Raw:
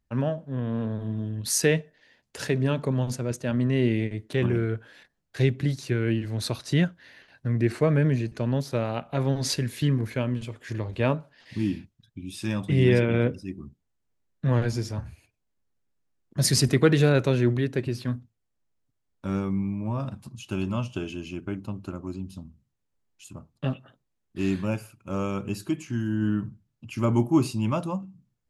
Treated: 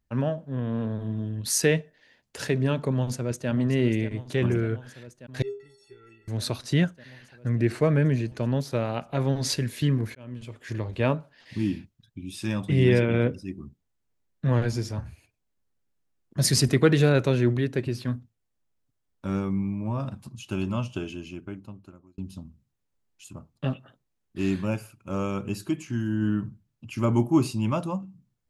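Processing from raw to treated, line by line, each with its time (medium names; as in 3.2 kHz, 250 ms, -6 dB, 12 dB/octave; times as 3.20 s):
2.92–3.49 s: echo throw 590 ms, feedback 80%, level -12.5 dB
5.42–6.28 s: inharmonic resonator 400 Hz, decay 0.49 s, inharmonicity 0.03
10.15–10.68 s: fade in
20.93–22.18 s: fade out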